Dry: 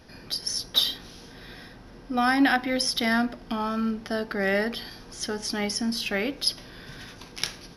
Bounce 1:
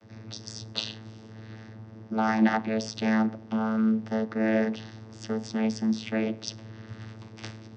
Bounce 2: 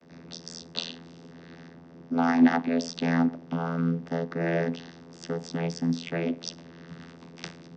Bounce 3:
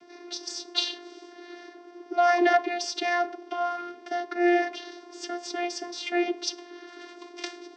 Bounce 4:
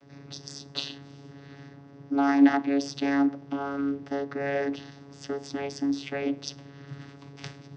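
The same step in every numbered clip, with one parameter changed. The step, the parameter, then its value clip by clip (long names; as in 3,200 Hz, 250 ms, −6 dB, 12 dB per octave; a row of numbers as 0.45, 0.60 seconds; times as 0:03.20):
channel vocoder, frequency: 110, 84, 350, 140 Hertz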